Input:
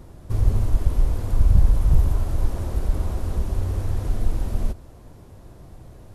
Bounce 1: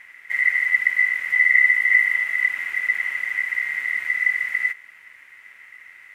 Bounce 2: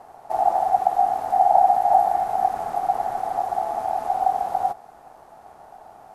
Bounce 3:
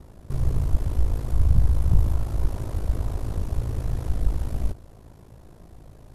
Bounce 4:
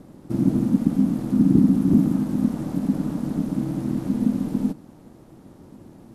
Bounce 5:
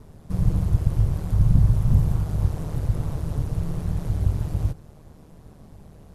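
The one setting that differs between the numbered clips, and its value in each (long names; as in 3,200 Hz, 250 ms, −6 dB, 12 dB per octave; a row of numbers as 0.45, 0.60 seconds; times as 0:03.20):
ring modulation, frequency: 2,000, 760, 27, 230, 76 Hertz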